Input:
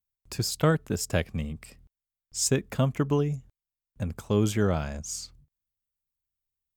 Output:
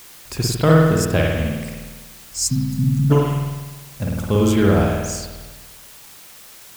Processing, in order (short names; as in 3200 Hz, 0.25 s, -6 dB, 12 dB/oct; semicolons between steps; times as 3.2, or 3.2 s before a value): spring tank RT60 1.3 s, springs 50 ms, chirp 50 ms, DRR -3 dB; spectral delete 2.18–3.1, 260–3900 Hz; requantised 8-bit, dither triangular; gain +5.5 dB